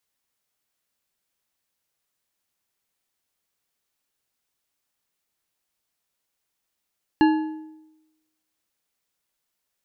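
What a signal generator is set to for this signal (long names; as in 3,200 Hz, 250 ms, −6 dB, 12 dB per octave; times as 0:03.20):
struck metal bar, lowest mode 313 Hz, decay 0.99 s, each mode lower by 6.5 dB, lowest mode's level −12 dB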